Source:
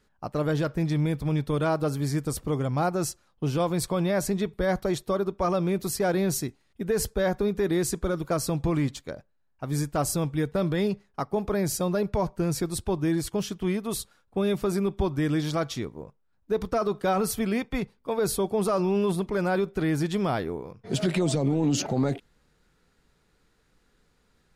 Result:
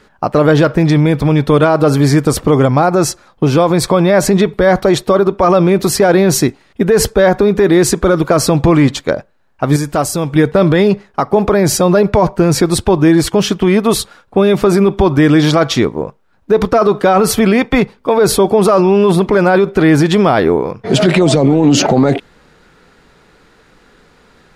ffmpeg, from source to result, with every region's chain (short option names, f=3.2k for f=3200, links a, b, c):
-filter_complex "[0:a]asettb=1/sr,asplit=3[a][b][c];[a]atrim=end=2.654[d];[b]atrim=start=2.65:end=4.14,asetpts=PTS-STARTPTS,afade=t=in:d=0.004:c=qsin,afade=t=out:st=1.486:d=0.004:c=qsin,bandreject=f=2.9k:w=11,acompressor=threshold=-28dB:ratio=2:attack=3.2:release=140:knee=1:detection=peak[e];[c]atrim=start=4.136[f];[d][e]acrossfade=d=0.004:c1=hsin:c2=qsin[g];[g][f]acrossfade=d=0.004:c1=qsin:c2=hsin,asettb=1/sr,asplit=3[h][i][j];[h]atrim=end=9.764[k];[i]atrim=start=9.76:end=10.36,asetpts=PTS-STARTPTS,afade=t=in:d=0.004:c=qsin,afade=t=out:st=0.596:d=0.004:c=qsin,highshelf=f=4.9k:g=6.5,acompressor=threshold=-36dB:ratio=2.5:attack=3.2:release=140:knee=1:detection=peak[l];[j]atrim=start=10.356[m];[k][l]acrossfade=d=0.004:c1=hsin:c2=qsin[n];[n][m]acrossfade=d=0.004:c1=qsin:c2=hsin,lowpass=f=2.8k:p=1,lowshelf=f=170:g=-10.5,alimiter=level_in=24.5dB:limit=-1dB:release=50:level=0:latency=1,volume=-1dB"